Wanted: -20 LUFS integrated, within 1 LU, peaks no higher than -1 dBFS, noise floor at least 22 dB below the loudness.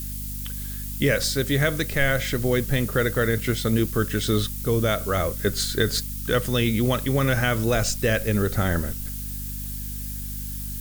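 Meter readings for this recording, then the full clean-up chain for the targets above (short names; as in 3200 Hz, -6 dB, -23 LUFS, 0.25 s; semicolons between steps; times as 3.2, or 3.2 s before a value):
hum 50 Hz; harmonics up to 250 Hz; hum level -31 dBFS; noise floor -32 dBFS; noise floor target -46 dBFS; loudness -24.0 LUFS; peak -8.5 dBFS; loudness target -20.0 LUFS
-> notches 50/100/150/200/250 Hz; denoiser 14 dB, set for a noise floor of -32 dBFS; gain +4 dB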